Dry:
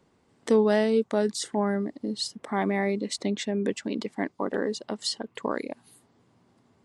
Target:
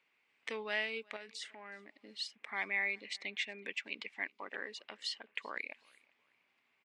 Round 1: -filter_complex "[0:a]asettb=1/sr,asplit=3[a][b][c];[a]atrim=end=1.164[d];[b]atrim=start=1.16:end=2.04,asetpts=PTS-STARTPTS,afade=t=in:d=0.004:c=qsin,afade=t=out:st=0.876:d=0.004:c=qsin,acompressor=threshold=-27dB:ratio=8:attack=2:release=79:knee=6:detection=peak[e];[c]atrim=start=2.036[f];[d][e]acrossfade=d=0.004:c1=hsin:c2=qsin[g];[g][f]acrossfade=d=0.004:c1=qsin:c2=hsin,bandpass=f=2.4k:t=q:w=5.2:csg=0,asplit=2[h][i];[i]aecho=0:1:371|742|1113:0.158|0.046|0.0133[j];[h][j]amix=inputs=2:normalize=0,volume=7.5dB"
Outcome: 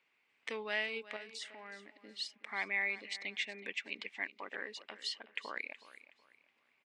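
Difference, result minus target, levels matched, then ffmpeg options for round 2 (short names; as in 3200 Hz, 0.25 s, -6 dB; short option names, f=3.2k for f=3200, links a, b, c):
echo-to-direct +11 dB
-filter_complex "[0:a]asettb=1/sr,asplit=3[a][b][c];[a]atrim=end=1.164[d];[b]atrim=start=1.16:end=2.04,asetpts=PTS-STARTPTS,afade=t=in:d=0.004:c=qsin,afade=t=out:st=0.876:d=0.004:c=qsin,acompressor=threshold=-27dB:ratio=8:attack=2:release=79:knee=6:detection=peak[e];[c]atrim=start=2.036[f];[d][e]acrossfade=d=0.004:c1=hsin:c2=qsin[g];[g][f]acrossfade=d=0.004:c1=qsin:c2=hsin,bandpass=f=2.4k:t=q:w=5.2:csg=0,asplit=2[h][i];[i]aecho=0:1:371|742:0.0447|0.013[j];[h][j]amix=inputs=2:normalize=0,volume=7.5dB"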